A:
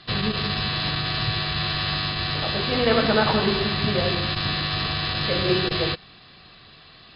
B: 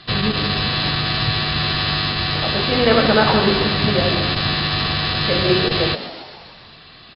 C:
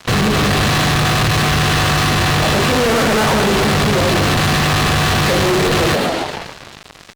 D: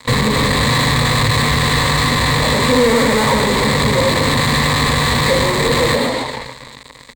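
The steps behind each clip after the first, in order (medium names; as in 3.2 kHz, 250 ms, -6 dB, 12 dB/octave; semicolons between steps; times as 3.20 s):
frequency-shifting echo 138 ms, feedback 59%, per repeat +90 Hz, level -13 dB; trim +5 dB
Bessel low-pass 2 kHz, order 2; fuzz box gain 35 dB, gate -42 dBFS
rippled EQ curve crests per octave 1, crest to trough 12 dB; trim -1.5 dB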